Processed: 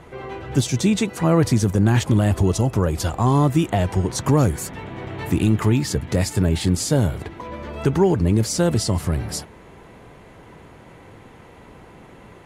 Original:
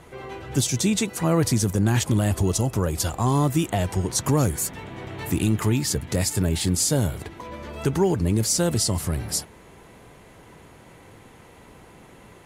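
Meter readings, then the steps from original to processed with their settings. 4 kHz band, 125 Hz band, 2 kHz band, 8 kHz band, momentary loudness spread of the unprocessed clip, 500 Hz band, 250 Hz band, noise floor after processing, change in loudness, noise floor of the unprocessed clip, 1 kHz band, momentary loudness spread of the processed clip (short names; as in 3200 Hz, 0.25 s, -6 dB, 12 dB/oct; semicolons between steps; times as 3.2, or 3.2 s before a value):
-1.0 dB, +4.0 dB, +2.5 dB, -4.0 dB, 8 LU, +4.0 dB, +4.0 dB, -46 dBFS, +3.0 dB, -49 dBFS, +3.5 dB, 14 LU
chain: high shelf 5000 Hz -11.5 dB; gain +4 dB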